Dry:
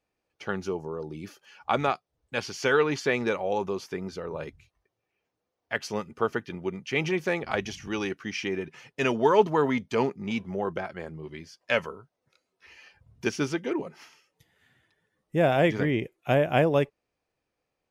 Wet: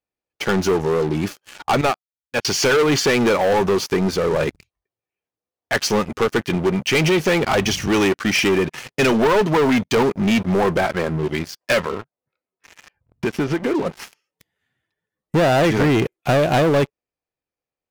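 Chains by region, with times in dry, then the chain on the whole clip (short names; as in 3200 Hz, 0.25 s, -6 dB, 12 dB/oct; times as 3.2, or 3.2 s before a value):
1.81–2.45 HPF 61 Hz + upward expander 2.5:1, over -38 dBFS
11.79–13.86 LPF 2400 Hz + compressor, threshold -34 dBFS
whole clip: compressor 2.5:1, threshold -26 dBFS; sample leveller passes 5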